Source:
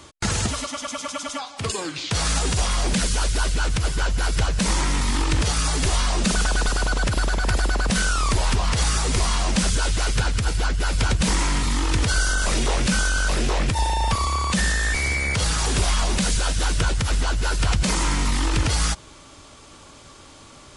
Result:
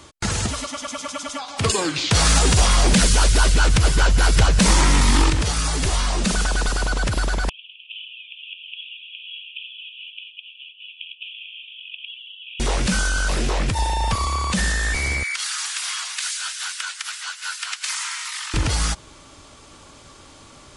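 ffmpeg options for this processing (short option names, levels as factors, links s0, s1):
-filter_complex "[0:a]asettb=1/sr,asplit=3[s0][s1][s2];[s0]atrim=end=1.484[s3];[s1]atrim=start=1.48:end=5.3,asetpts=PTS-STARTPTS,afade=t=in:d=0.004:c=qsin,afade=t=out:st=3.816:d=0.004:c=qsin,acontrast=70[s4];[s2]atrim=start=5.296[s5];[s3][s4]acrossfade=d=0.004:c1=hsin:c2=qsin[s6];[s6][s5]acrossfade=d=0.004:c1=qsin:c2=hsin,asettb=1/sr,asplit=3[s7][s8][s9];[s7]atrim=end=7.494[s10];[s8]atrim=start=7.49:end=12.6,asetpts=PTS-STARTPTS,afade=t=in:d=0.004:c=qsin,afade=t=out:st=5.106:d=0.004:c=qsin,asuperpass=centerf=2900:order=12:qfactor=3.1[s11];[s9]atrim=start=12.596[s12];[s10][s11]acrossfade=d=0.004:c1=hsin:c2=qsin[s13];[s13][s12]acrossfade=d=0.004:c1=qsin:c2=hsin,asettb=1/sr,asplit=3[s14][s15][s16];[s14]atrim=end=15.234[s17];[s15]atrim=start=15.23:end=18.54,asetpts=PTS-STARTPTS,afade=t=in:d=0.004:c=qsin,afade=t=out:st=3.306:d=0.004:c=qsin,highpass=f=1300:w=0.5412,highpass=f=1300:w=1.3066[s18];[s16]atrim=start=18.536[s19];[s17][s18]acrossfade=d=0.004:c1=hsin:c2=qsin[s20];[s20][s19]acrossfade=d=0.004:c1=qsin:c2=hsin"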